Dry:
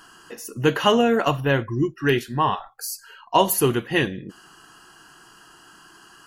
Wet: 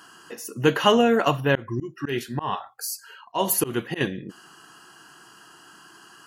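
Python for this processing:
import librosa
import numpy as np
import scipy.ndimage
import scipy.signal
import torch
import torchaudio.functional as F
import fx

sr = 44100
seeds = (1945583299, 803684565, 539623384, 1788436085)

y = scipy.signal.sosfilt(scipy.signal.butter(2, 110.0, 'highpass', fs=sr, output='sos'), x)
y = fx.auto_swell(y, sr, attack_ms=165.0, at=(1.55, 4.01))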